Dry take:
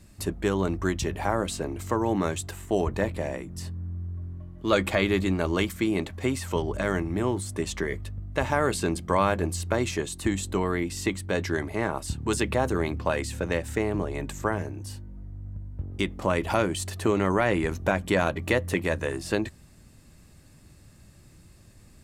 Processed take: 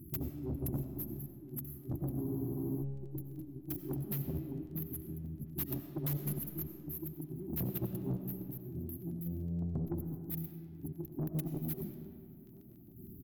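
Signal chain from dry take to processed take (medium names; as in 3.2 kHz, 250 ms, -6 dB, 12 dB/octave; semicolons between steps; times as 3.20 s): gliding tape speed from 149% -> 184%; high-pass 100 Hz 6 dB/octave; hum notches 50/100/150/200/250/300/350 Hz; compressor with a negative ratio -32 dBFS, ratio -0.5; square tremolo 0.54 Hz, depth 60%, duty 45%; FFT band-reject 400–11000 Hz; saturation -32 dBFS, distortion -11 dB; crackle 13 per s -54 dBFS; echo from a far wall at 230 m, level -24 dB; on a send at -7 dB: reverberation RT60 2.3 s, pre-delay 50 ms; on the sum: spectral freeze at 2.25 s, 0.56 s; trim +1 dB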